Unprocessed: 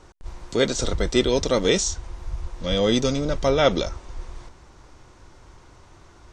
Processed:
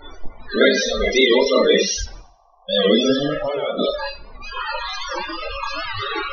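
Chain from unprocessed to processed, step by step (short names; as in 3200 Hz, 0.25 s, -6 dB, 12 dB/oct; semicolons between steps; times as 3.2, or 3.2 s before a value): delta modulation 32 kbps, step -17 dBFS; 2.17–2.69 vocal tract filter a; Schroeder reverb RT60 0.41 s, combs from 27 ms, DRR -4 dB; spectral noise reduction 18 dB; short-mantissa float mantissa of 2-bit; bell 130 Hz -8 dB 2.2 oct; 3.33–3.79 compressor 6:1, threshold -23 dBFS, peak gain reduction 14 dB; loudest bins only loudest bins 32; 0.61–1.43 bell 1600 Hz +10.5 dB 0.92 oct; thinning echo 88 ms, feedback 40%, high-pass 370 Hz, level -20 dB; record warp 78 rpm, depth 100 cents; gain +2.5 dB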